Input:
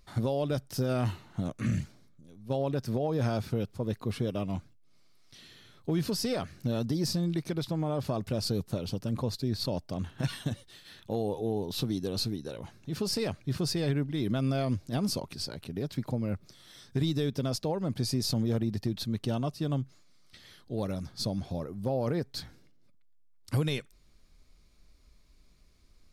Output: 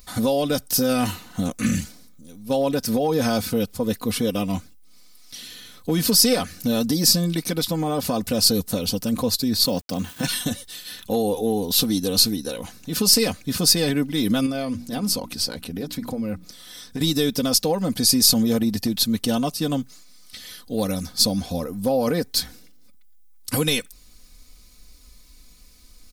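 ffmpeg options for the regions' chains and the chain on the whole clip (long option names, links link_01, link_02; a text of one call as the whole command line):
ffmpeg -i in.wav -filter_complex "[0:a]asettb=1/sr,asplit=3[link_01][link_02][link_03];[link_01]atrim=end=9.654[link_04];[link_02]atrim=start=9.65:end=10.28,asetpts=PTS-STARTPTS,afade=type=in:duration=0.004:curve=qsin,afade=type=out:start_time=0.626:duration=0.004:curve=qsin,highpass=frequency=95:width=0.5412,highpass=frequency=95:width=1.3066,highshelf=frequency=8300:gain=-5,aeval=exprs='val(0)*gte(abs(val(0)),0.00188)':channel_layout=same[link_05];[link_03]atrim=start=10.276[link_06];[link_04][link_05]acrossfade=duration=0.004:curve1=hsin:curve2=qsin[link_07];[link_07][link_06]acrossfade=duration=0.004:curve1=qsin:curve2=hsin,asettb=1/sr,asplit=3[link_08][link_09][link_10];[link_08]atrim=end=14.464[link_11];[link_09]atrim=start=14.46:end=17.01,asetpts=PTS-STARTPTS,afade=type=in:duration=0.004:curve=qsin,afade=type=out:start_time=2.546:duration=0.004:curve=qsin,highshelf=frequency=3700:gain=-6.5,bandreject=frequency=60:width_type=h:width=6,bandreject=frequency=120:width_type=h:width=6,bandreject=frequency=180:width_type=h:width=6,bandreject=frequency=240:width_type=h:width=6,bandreject=frequency=300:width_type=h:width=6,acompressor=threshold=-34dB:ratio=2:attack=3.2:release=140:knee=1:detection=peak[link_12];[link_10]atrim=start=17.006[link_13];[link_11][link_12]acrossfade=duration=0.004:curve1=hsin:curve2=qsin[link_14];[link_14][link_13]acrossfade=duration=0.004:curve1=qsin:curve2=hsin,aemphasis=mode=production:type=75kf,aecho=1:1:4:0.69,volume=7dB" out.wav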